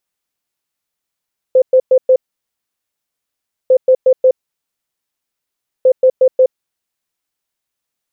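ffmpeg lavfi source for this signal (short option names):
-f lavfi -i "aevalsrc='0.562*sin(2*PI*516*t)*clip(min(mod(mod(t,2.15),0.18),0.07-mod(mod(t,2.15),0.18))/0.005,0,1)*lt(mod(t,2.15),0.72)':d=6.45:s=44100"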